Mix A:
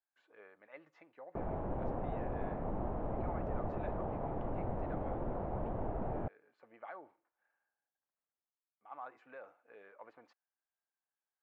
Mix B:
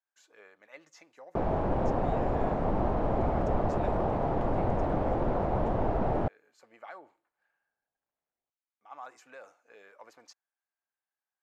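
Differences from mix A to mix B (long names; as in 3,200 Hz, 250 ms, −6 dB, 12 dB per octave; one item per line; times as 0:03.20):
background +9.0 dB
master: remove high-frequency loss of the air 500 metres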